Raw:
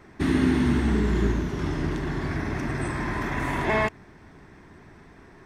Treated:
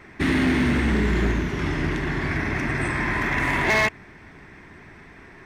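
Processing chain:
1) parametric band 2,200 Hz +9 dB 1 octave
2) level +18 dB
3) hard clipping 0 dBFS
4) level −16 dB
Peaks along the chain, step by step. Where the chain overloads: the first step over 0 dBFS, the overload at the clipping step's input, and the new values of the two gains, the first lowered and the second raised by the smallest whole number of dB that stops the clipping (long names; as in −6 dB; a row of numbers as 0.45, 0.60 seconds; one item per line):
−8.0, +10.0, 0.0, −16.0 dBFS
step 2, 10.0 dB
step 2 +8 dB, step 4 −6 dB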